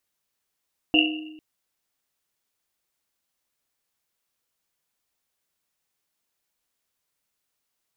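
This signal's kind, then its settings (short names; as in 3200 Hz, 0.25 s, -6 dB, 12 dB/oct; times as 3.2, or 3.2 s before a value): Risset drum length 0.45 s, pitch 310 Hz, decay 1.10 s, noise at 2800 Hz, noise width 200 Hz, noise 55%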